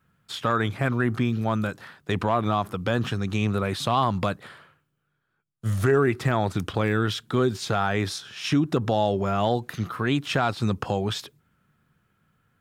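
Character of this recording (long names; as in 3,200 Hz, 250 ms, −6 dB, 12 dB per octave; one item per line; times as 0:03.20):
background noise floor −75 dBFS
spectral slope −5.0 dB per octave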